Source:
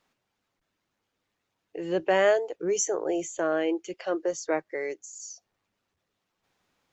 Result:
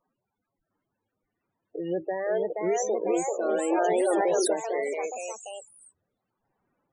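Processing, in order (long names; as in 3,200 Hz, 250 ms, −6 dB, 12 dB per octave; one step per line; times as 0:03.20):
0:02.43–0:02.83: high-shelf EQ 6,400 Hz +12 dB
brickwall limiter −21 dBFS, peak gain reduction 11 dB
high-shelf EQ 2,800 Hz −2.5 dB
spectral peaks only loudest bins 16
delay with pitch and tempo change per echo 704 ms, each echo +2 semitones, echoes 3
0:03.73–0:04.54: envelope flattener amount 100%
level +1.5 dB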